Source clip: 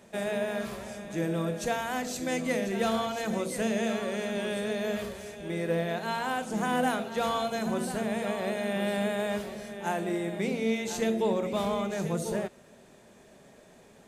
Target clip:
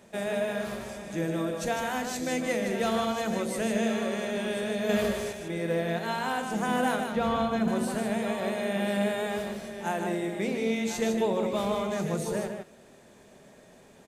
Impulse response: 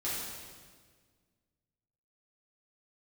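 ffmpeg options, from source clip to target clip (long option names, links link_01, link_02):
-filter_complex "[0:a]asettb=1/sr,asplit=3[link_01][link_02][link_03];[link_01]atrim=end=4.894[link_04];[link_02]atrim=start=4.89:end=5.33,asetpts=PTS-STARTPTS,afade=type=in:duration=0.004:curve=qsin,afade=type=out:start_time=0.436:duration=0.004:curve=qsin,acontrast=51[link_05];[link_03]atrim=start=5.326[link_06];[link_04][link_05]acrossfade=duration=0.004:curve1=hsin:curve2=qsin[link_07];[link_07][link_06]acrossfade=duration=0.004:curve1=qsin:curve2=hsin,asettb=1/sr,asplit=3[link_08][link_09][link_10];[link_08]atrim=end=7.124[link_11];[link_09]atrim=start=7.12:end=7.68,asetpts=PTS-STARTPTS,afade=type=in:duration=0.004:curve=qsin,afade=type=out:start_time=0.556:duration=0.004:curve=qsin,bass=frequency=250:gain=9,treble=frequency=4000:gain=-11[link_12];[link_10]atrim=start=7.676[link_13];[link_11][link_12]acrossfade=duration=0.004:curve1=hsin:curve2=qsin[link_14];[link_14][link_13]acrossfade=duration=0.004:curve1=qsin:curve2=hsin,aecho=1:1:153:0.501"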